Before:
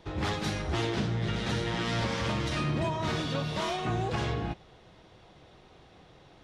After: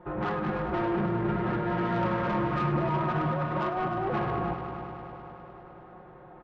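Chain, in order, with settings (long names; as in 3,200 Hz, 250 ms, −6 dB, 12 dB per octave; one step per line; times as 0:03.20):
low-pass filter 1,400 Hz 24 dB per octave
spectral tilt +2 dB per octave
comb filter 5.6 ms, depth 93%
0:02.87–0:04.06: compressor whose output falls as the input rises −32 dBFS, ratio −0.5
soft clipping −30 dBFS, distortion −13 dB
echo machine with several playback heads 102 ms, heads all three, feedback 69%, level −13.5 dB
level +5.5 dB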